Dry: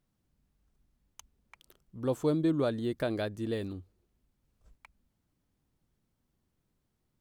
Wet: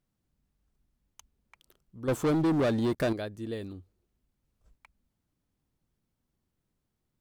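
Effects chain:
0:02.08–0:03.13: leveller curve on the samples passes 3
level −2.5 dB

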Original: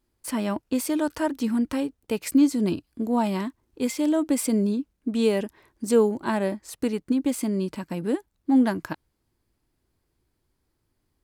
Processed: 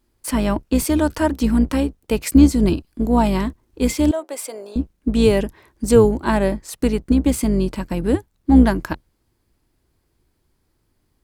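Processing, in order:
sub-octave generator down 2 octaves, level −4 dB
0:04.11–0:04.76: four-pole ladder high-pass 480 Hz, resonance 35%
level +6.5 dB

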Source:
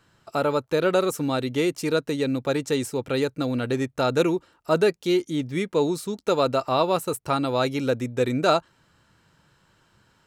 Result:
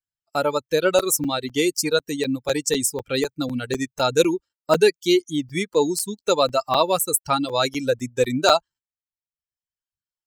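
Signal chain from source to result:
spectral dynamics exaggerated over time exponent 1.5
bass and treble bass −5 dB, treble +11 dB
noise gate −48 dBFS, range −23 dB
reverb reduction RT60 0.84 s
regular buffer underruns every 0.25 s, samples 256, zero, from 0:00.99
level +6 dB

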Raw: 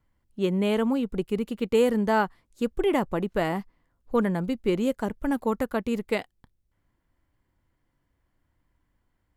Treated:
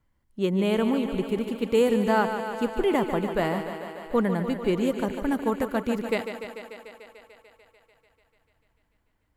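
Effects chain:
on a send: feedback echo with a high-pass in the loop 147 ms, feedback 78%, high-pass 170 Hz, level −8.5 dB

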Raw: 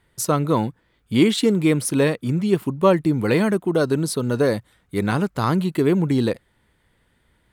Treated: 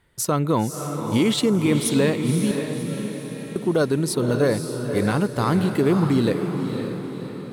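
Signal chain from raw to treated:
brickwall limiter −11 dBFS, peak gain reduction 6.5 dB
0:02.51–0:03.56: tuned comb filter 270 Hz, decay 1.1 s, mix 100%
feedback delay with all-pass diffusion 542 ms, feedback 51%, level −6.5 dB

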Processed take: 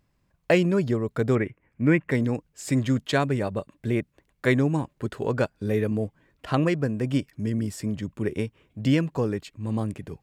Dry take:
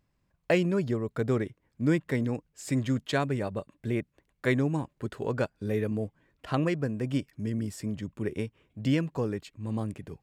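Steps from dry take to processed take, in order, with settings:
0:01.35–0:02.11: high shelf with overshoot 3,100 Hz −9 dB, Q 3
level +4.5 dB

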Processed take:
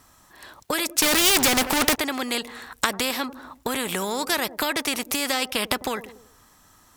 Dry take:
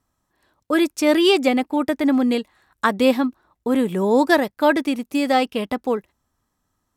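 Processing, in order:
downward compressor 6 to 1, threshold −25 dBFS, peak gain reduction 13.5 dB
tilt shelving filter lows −4.5 dB, about 720 Hz
on a send: delay with a low-pass on its return 95 ms, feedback 35%, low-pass 540 Hz, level −21 dB
0:01.02–0:01.96: on the sum: leveller curve on the samples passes 5
every bin compressed towards the loudest bin 2 to 1
level +5.5 dB

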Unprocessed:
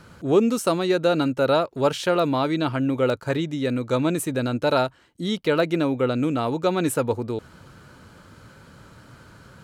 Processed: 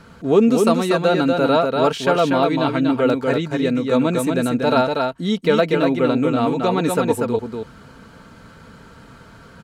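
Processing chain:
high-shelf EQ 6,000 Hz −6.5 dB
comb filter 4.4 ms, depth 41%
single-tap delay 240 ms −4 dB
level +3 dB

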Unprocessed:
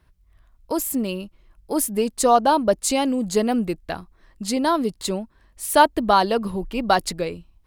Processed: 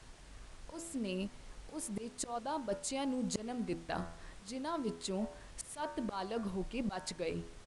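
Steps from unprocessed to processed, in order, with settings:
hum removal 83.37 Hz, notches 23
volume swells 795 ms
reversed playback
downward compressor 8 to 1, threshold −36 dBFS, peak gain reduction 18.5 dB
reversed playback
background noise pink −59 dBFS
downsampling to 22,050 Hz
level +1.5 dB

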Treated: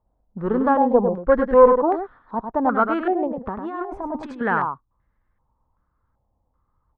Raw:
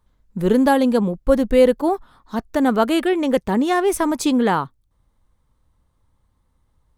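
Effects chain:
0:00.93–0:02.35: parametric band 500 Hz +7 dB 0.91 octaves
0:03.27–0:04.41: compressor whose output falls as the input rises −23 dBFS, ratio −0.5
tube saturation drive 1 dB, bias 0.4
on a send: single-tap delay 100 ms −6.5 dB
on the sum: low-pass on a step sequencer 2.6 Hz 730–1,800 Hz
level −5.5 dB

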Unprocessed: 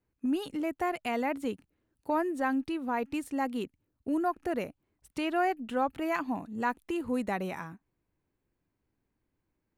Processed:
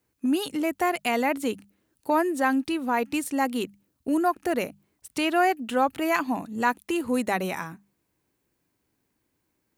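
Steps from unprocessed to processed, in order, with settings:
high-pass filter 110 Hz 6 dB per octave
high-shelf EQ 3,500 Hz +9 dB
mains-hum notches 50/100/150/200 Hz
level +6 dB

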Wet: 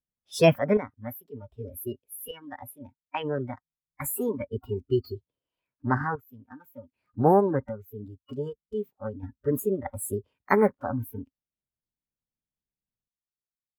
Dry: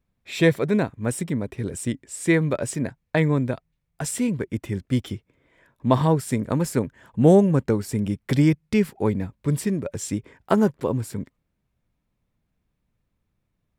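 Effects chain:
sample-and-hold tremolo 1.3 Hz, depth 85%
formants moved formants +6 semitones
noise reduction from a noise print of the clip's start 24 dB

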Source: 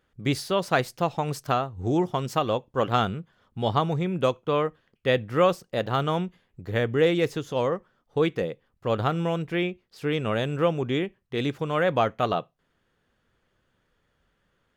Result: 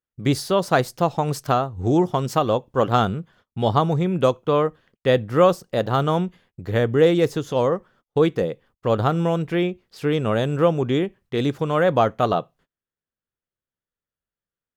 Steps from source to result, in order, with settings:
noise gate −57 dBFS, range −30 dB
dynamic equaliser 2,400 Hz, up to −7 dB, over −43 dBFS, Q 1.2
level +5.5 dB

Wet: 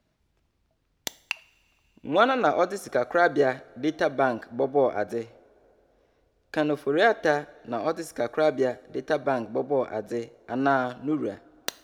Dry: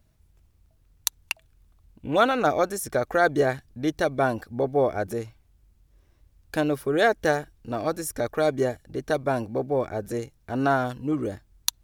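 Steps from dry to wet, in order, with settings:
wrap-around overflow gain 5 dB
three-way crossover with the lows and the highs turned down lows −14 dB, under 170 Hz, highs −14 dB, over 5,900 Hz
coupled-rooms reverb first 0.5 s, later 3.6 s, from −18 dB, DRR 17 dB

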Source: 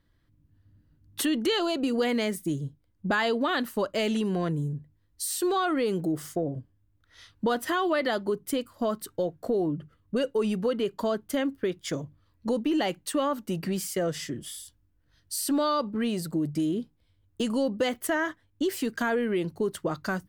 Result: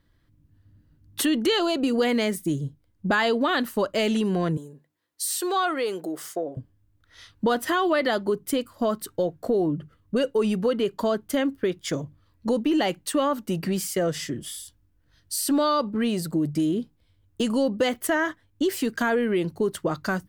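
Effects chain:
0:04.57–0:06.57: high-pass filter 450 Hz 12 dB per octave
level +3.5 dB

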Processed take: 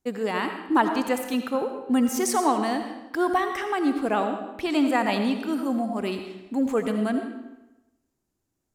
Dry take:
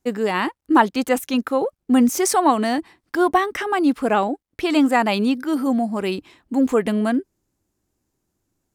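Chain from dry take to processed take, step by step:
comb and all-pass reverb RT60 1 s, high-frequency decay 0.85×, pre-delay 40 ms, DRR 6 dB
level −6 dB

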